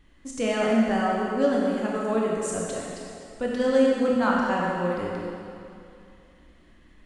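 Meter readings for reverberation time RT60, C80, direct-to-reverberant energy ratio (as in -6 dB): 2.6 s, 0.0 dB, -4.0 dB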